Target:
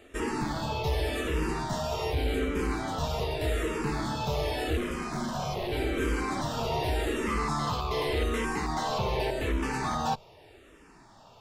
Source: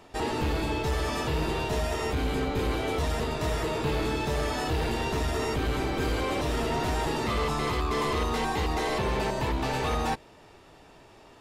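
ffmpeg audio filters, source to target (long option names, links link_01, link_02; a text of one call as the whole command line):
ffmpeg -i in.wav -filter_complex "[0:a]asettb=1/sr,asplit=3[link_01][link_02][link_03];[link_01]atrim=end=4.774[link_04];[link_02]atrim=start=4.77:end=5.72,asetpts=PTS-STARTPTS,afade=type=in:duration=0.004:curve=qsin,afade=type=out:start_time=0.946:duration=0.004:curve=qsin,aeval=exprs='val(0)*sin(2*PI*300*n/s)':channel_layout=same[link_05];[link_03]atrim=start=5.716[link_06];[link_04][link_05]acrossfade=duration=0.004:curve1=hsin:curve2=qsin[link_07];[link_07][link_06]acrossfade=duration=0.004:curve1=qsin:curve2=hsin,asplit=2[link_08][link_09];[link_09]afreqshift=-0.85[link_10];[link_08][link_10]amix=inputs=2:normalize=1,volume=1.5dB" out.wav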